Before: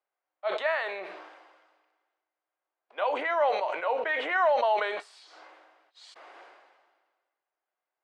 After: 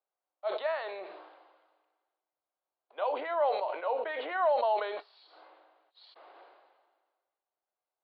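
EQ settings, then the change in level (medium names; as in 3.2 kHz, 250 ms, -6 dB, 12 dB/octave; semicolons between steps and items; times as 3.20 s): high-pass 320 Hz 12 dB/octave; elliptic low-pass 4.3 kHz, stop band 40 dB; peaking EQ 2 kHz -11 dB 1.4 oct; 0.0 dB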